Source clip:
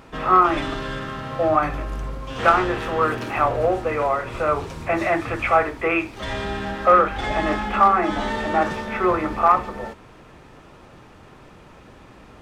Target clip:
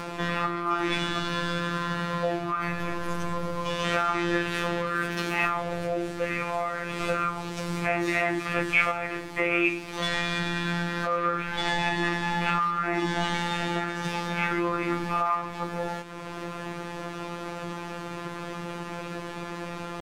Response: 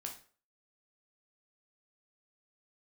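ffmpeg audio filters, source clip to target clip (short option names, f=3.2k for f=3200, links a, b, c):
-filter_complex "[0:a]lowshelf=f=60:g=-12,asplit=2[a][b];[b]acompressor=mode=upward:threshold=-22dB:ratio=2.5,volume=1dB[c];[a][c]amix=inputs=2:normalize=0,alimiter=limit=-7.5dB:level=0:latency=1:release=140,acrossover=split=220|1600[d][e][f];[e]acompressor=threshold=-27dB:ratio=6[g];[d][g][f]amix=inputs=3:normalize=0,afftfilt=real='hypot(re,im)*cos(PI*b)':imag='0':win_size=1024:overlap=0.75,atempo=0.62"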